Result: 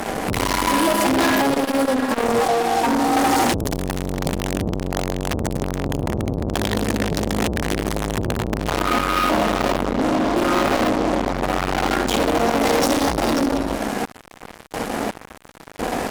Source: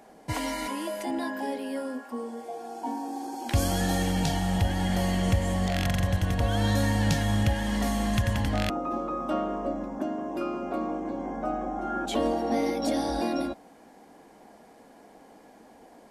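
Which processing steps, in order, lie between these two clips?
flutter echo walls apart 10.6 m, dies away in 0.67 s; chopper 0.95 Hz, depth 60%, duty 35%; low shelf 130 Hz +8 dB; fuzz box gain 46 dB, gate -53 dBFS; core saturation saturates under 440 Hz

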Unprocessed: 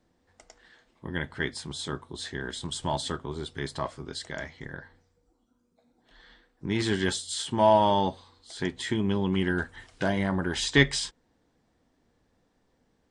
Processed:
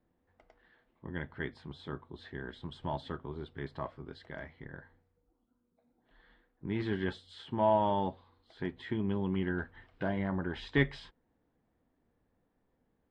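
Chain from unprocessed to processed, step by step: air absorption 410 m; gain -5.5 dB

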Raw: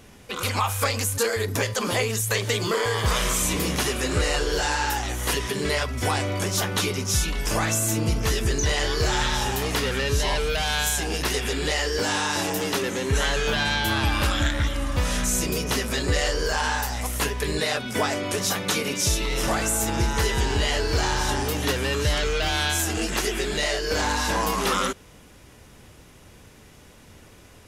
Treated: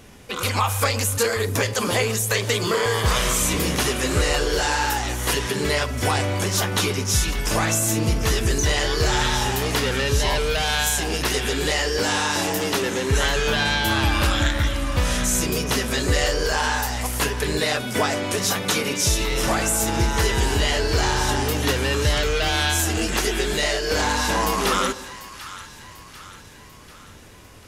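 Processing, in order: split-band echo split 970 Hz, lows 0.121 s, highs 0.743 s, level -14.5 dB; gain +2.5 dB

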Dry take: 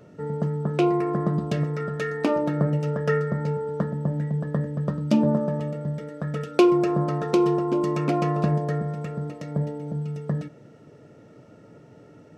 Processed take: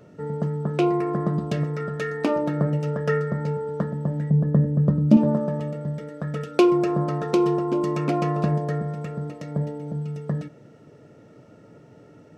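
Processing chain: 4.3–5.17 tilt shelf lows +8.5 dB, about 670 Hz

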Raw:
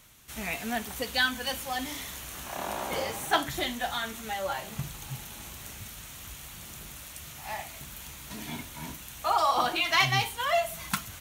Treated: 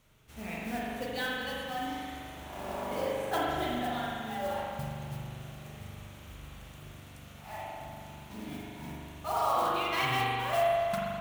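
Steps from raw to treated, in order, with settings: EQ curve 490 Hz 0 dB, 1800 Hz -7 dB, 2700 Hz -6 dB, 15000 Hz -14 dB; modulation noise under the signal 14 dB; spring tank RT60 2.2 s, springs 41 ms, chirp 70 ms, DRR -5 dB; gain -5.5 dB

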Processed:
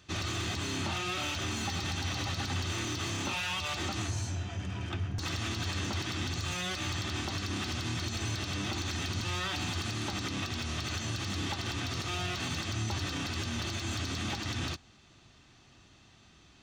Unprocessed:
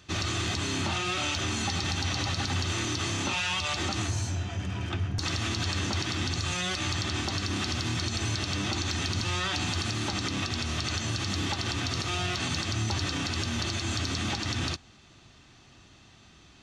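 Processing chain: slew limiter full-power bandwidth 140 Hz; gain -4 dB

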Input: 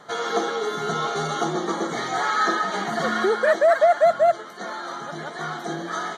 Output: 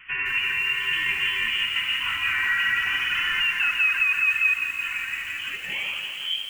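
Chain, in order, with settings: tape stop at the end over 0.99 s; inverted band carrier 3200 Hz; low shelf 150 Hz -3 dB; notch 670 Hz, Q 12; on a send: tape echo 80 ms, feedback 48%, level -15 dB, low-pass 1600 Hz; on the sum: tempo 0.95×; limiter -16 dBFS, peak gain reduction 8.5 dB; lo-fi delay 0.17 s, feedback 80%, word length 7-bit, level -8.5 dB

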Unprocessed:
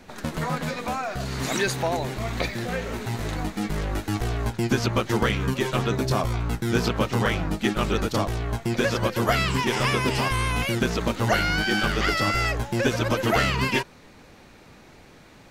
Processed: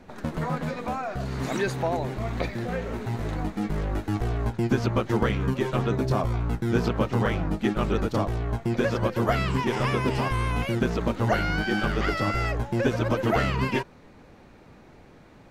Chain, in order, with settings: high shelf 2100 Hz -11.5 dB

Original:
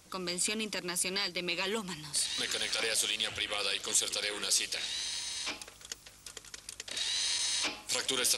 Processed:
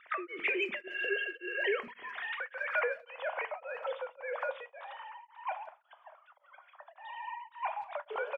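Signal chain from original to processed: sine-wave speech; low-pass sweep 2000 Hz -> 950 Hz, 1.84–3.23; dynamic EQ 2200 Hz, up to +5 dB, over -46 dBFS, Q 2.4; compressor 6:1, threshold -32 dBFS, peak gain reduction 11 dB; spectral repair 0.84–1.62, 740–2800 Hz before; speakerphone echo 0.17 s, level -21 dB; two-slope reverb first 0.52 s, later 1.8 s, from -19 dB, DRR 9 dB; beating tremolo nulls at 1.8 Hz; gain +3.5 dB

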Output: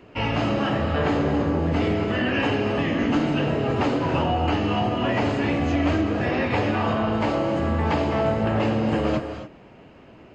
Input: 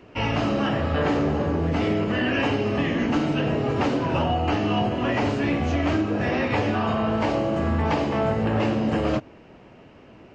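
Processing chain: notch 5700 Hz, Q 9.7; non-linear reverb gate 0.3 s rising, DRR 8 dB

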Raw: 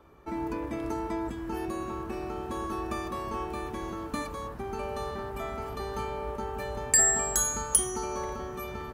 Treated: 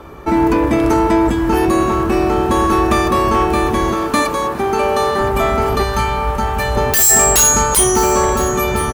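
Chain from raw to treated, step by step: 3.92–5.2 HPF 280 Hz 6 dB/oct; 5.83–6.76 bell 380 Hz -9.5 dB 1.6 oct; sine folder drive 17 dB, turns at -7 dBFS; echo 1.014 s -15.5 dB

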